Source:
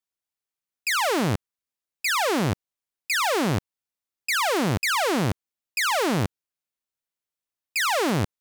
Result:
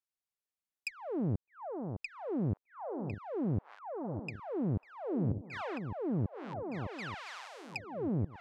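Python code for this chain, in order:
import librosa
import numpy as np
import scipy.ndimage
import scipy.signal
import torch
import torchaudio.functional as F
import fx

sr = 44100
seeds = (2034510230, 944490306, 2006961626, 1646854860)

p1 = x + fx.echo_alternate(x, sr, ms=608, hz=840.0, feedback_pct=70, wet_db=-8.0, dry=0)
p2 = fx.env_lowpass_down(p1, sr, base_hz=380.0, full_db=-22.0)
y = p2 * librosa.db_to_amplitude(-7.0)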